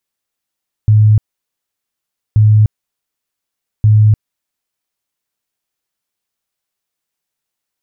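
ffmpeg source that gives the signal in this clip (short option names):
-f lavfi -i "aevalsrc='0.596*sin(2*PI*107*mod(t,1.48))*lt(mod(t,1.48),32/107)':d=4.44:s=44100"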